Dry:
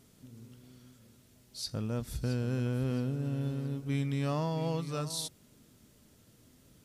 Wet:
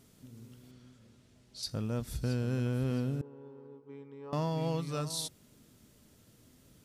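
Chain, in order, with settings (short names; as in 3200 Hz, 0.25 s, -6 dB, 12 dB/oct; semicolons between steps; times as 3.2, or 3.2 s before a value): 0.71–1.63 air absorption 59 m; 3.21–4.33 double band-pass 640 Hz, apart 0.97 oct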